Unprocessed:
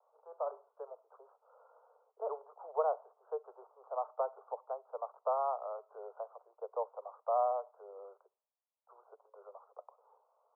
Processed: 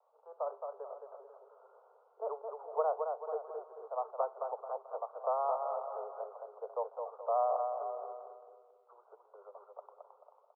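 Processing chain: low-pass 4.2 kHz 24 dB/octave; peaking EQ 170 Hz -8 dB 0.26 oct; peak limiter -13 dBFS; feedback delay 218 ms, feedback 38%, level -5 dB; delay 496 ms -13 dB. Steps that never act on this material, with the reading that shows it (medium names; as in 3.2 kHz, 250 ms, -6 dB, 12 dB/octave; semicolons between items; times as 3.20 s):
low-pass 4.2 kHz: input has nothing above 1.4 kHz; peaking EQ 170 Hz: input has nothing below 380 Hz; peak limiter -13 dBFS: peak at its input -18.0 dBFS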